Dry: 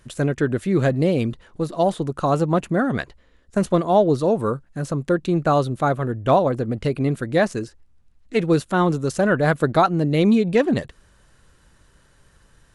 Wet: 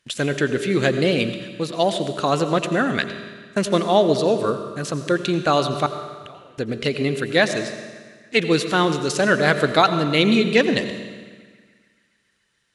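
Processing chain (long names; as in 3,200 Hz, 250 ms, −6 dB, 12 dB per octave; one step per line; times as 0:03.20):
noise gate −43 dBFS, range −16 dB
meter weighting curve D
0:05.86–0:06.58: gate with flip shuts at −20 dBFS, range −30 dB
feedback echo with a band-pass in the loop 141 ms, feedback 76%, band-pass 1,800 Hz, level −23.5 dB
on a send at −9 dB: convolution reverb RT60 1.5 s, pre-delay 82 ms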